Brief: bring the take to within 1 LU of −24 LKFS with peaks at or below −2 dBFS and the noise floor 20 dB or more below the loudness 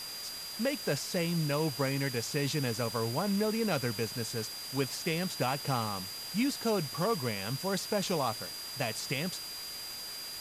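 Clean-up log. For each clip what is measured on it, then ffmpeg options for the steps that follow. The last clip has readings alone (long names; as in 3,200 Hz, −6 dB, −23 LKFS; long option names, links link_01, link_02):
interfering tone 4,800 Hz; level of the tone −41 dBFS; background noise floor −42 dBFS; target noise floor −53 dBFS; integrated loudness −32.5 LKFS; sample peak −17.5 dBFS; target loudness −24.0 LKFS
→ -af "bandreject=frequency=4800:width=30"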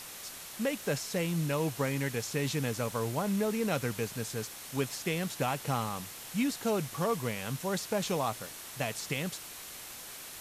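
interfering tone none found; background noise floor −46 dBFS; target noise floor −54 dBFS
→ -af "afftdn=noise_reduction=8:noise_floor=-46"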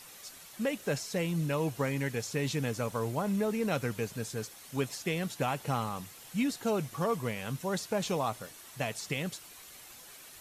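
background noise floor −51 dBFS; target noise floor −54 dBFS
→ -af "afftdn=noise_reduction=6:noise_floor=-51"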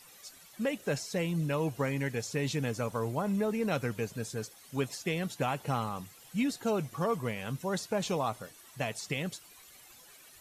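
background noise floor −56 dBFS; integrated loudness −33.5 LKFS; sample peak −18.0 dBFS; target loudness −24.0 LKFS
→ -af "volume=9.5dB"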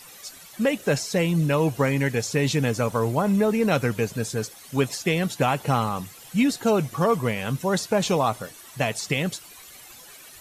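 integrated loudness −24.0 LKFS; sample peak −8.5 dBFS; background noise floor −46 dBFS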